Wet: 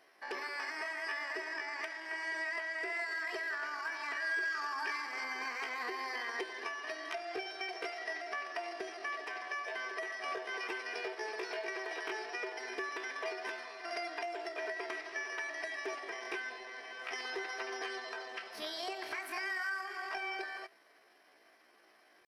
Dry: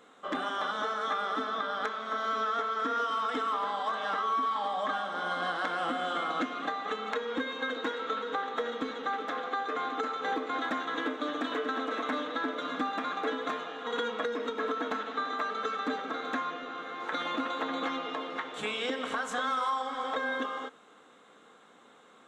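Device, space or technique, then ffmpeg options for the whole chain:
chipmunk voice: -filter_complex "[0:a]asettb=1/sr,asplit=3[link_01][link_02][link_03];[link_01]atrim=end=4.224[link_04];[link_02]atrim=start=4.22:end=5.26,asetpts=PTS-STARTPTS,afade=type=in:duration=0.004:curve=qsin,afade=type=out:start_time=1.036:duration=0.004:curve=qsin,equalizer=frequency=4100:width_type=o:width=2.9:gain=4.5[link_05];[link_03]atrim=start=5.256[link_06];[link_04][link_05]acrossfade=duration=0.004:curve1=hsin:curve2=qsin[link_07];[link_07][link_06]acrossfade=duration=0.004:curve1=qsin:curve2=hsin,asetrate=64194,aresample=44100,atempo=0.686977,volume=-7dB"

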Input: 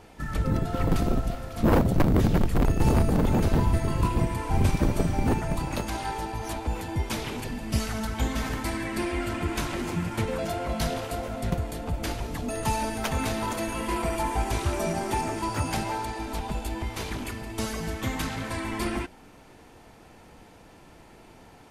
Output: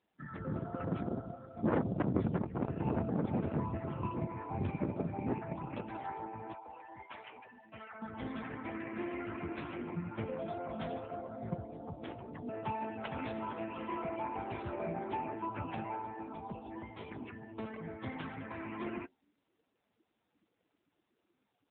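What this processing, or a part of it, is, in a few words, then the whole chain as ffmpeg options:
mobile call with aggressive noise cancelling: -filter_complex "[0:a]asettb=1/sr,asplit=3[link_01][link_02][link_03];[link_01]atrim=end=6.534[link_04];[link_02]atrim=start=6.53:end=8.02,asetpts=PTS-STARTPTS,afade=type=in:duration=0.004:curve=qsin,afade=type=out:start_time=1.486:duration=0.004:curve=qsin,acrossover=split=580 3900:gain=0.178 1 0.2[link_05][link_06][link_07];[link_05][link_06][link_07]amix=inputs=3:normalize=0[link_08];[link_03]atrim=start=8.016[link_09];[link_04][link_08]acrossfade=duration=0.004:curve1=hsin:curve2=qsin[link_10];[link_10][link_09]acrossfade=duration=0.004:curve1=qsin:curve2=hsin,highpass=frequency=130:poles=1,afftdn=noise_reduction=25:noise_floor=-38,volume=-8dB" -ar 8000 -c:a libopencore_amrnb -b:a 7950

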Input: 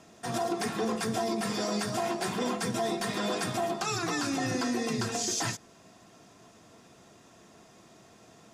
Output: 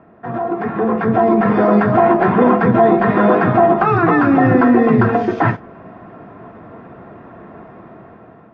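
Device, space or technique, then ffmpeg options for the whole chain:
action camera in a waterproof case: -af "lowpass=frequency=1700:width=0.5412,lowpass=frequency=1700:width=1.3066,dynaudnorm=framelen=420:gausssize=5:maxgain=10.5dB,volume=9dB" -ar 22050 -c:a aac -b:a 48k

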